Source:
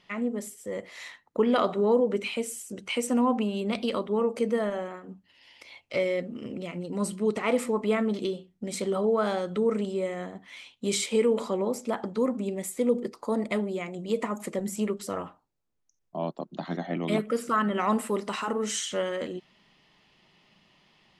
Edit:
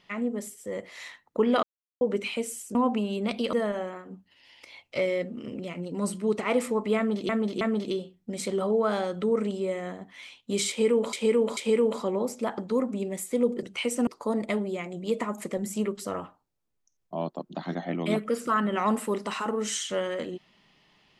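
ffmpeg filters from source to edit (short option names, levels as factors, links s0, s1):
-filter_complex "[0:a]asplit=11[s0][s1][s2][s3][s4][s5][s6][s7][s8][s9][s10];[s0]atrim=end=1.63,asetpts=PTS-STARTPTS,afade=t=out:st=1.626:d=0.004:c=hsin[s11];[s1]atrim=start=1.63:end=2.01,asetpts=PTS-STARTPTS,volume=0[s12];[s2]atrim=start=2.01:end=2.752,asetpts=PTS-STARTPTS,afade=t=in:d=0.004:c=hsin[s13];[s3]atrim=start=3.188:end=3.972[s14];[s4]atrim=start=4.508:end=8.272[s15];[s5]atrim=start=7.948:end=8.272[s16];[s6]atrim=start=7.948:end=11.472[s17];[s7]atrim=start=11.028:end=11.472[s18];[s8]atrim=start=11.028:end=13.092[s19];[s9]atrim=start=2.748:end=3.192[s20];[s10]atrim=start=13.088[s21];[s11][s12][s13]concat=n=3:v=0:a=1[s22];[s22][s14]acrossfade=d=0.004:c1=hsin:c2=hsin[s23];[s23][s15]acrossfade=d=0.004:c1=hsin:c2=hsin[s24];[s24][s16]acrossfade=d=0.004:c1=hsin:c2=hsin[s25];[s25][s17]acrossfade=d=0.004:c1=hsin:c2=hsin[s26];[s26][s18]acrossfade=d=0.004:c1=hsin:c2=hsin[s27];[s27][s19]acrossfade=d=0.004:c1=hsin:c2=hsin[s28];[s28][s20]acrossfade=d=0.004:c1=hsin:c2=hsin[s29];[s29][s21]acrossfade=d=0.004:c1=hsin:c2=hsin"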